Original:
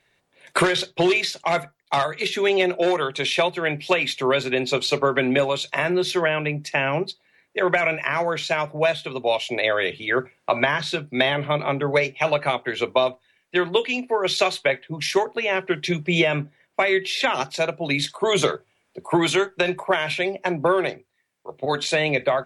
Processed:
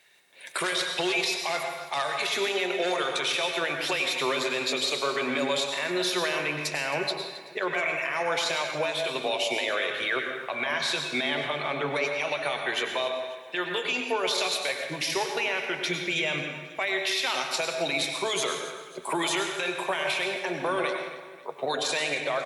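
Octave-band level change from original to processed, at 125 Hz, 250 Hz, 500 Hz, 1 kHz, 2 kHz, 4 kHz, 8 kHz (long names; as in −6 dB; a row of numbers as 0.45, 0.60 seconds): −13.0, −9.0, −8.0, −5.5, −4.0, −1.5, +1.0 decibels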